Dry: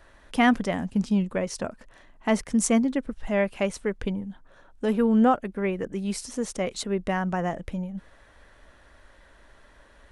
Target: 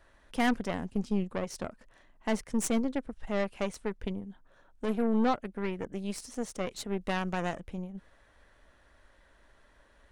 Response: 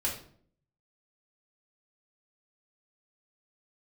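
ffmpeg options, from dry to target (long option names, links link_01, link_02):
-filter_complex "[0:a]aeval=exprs='0.398*(cos(1*acos(clip(val(0)/0.398,-1,1)))-cos(1*PI/2))+0.0398*(cos(8*acos(clip(val(0)/0.398,-1,1)))-cos(8*PI/2))':channel_layout=same,asettb=1/sr,asplit=3[link_01][link_02][link_03];[link_01]atrim=end=7.014[link_04];[link_02]atrim=start=7.01:end=7.6,asetpts=PTS-STARTPTS,afade=type=in:duration=0.004:curve=qsin,afade=type=out:start_time=0.586:duration=0.004:curve=qsin,highshelf=frequency=2200:gain=9[link_05];[link_03]atrim=start=7.596[link_06];[link_04][link_05]acrossfade=duration=0.004:curve1=hsin:curve2=qsin[link_07];[link_07][link_06]acrossfade=duration=0.004:curve1=qsin:curve2=hsin,volume=-7.5dB"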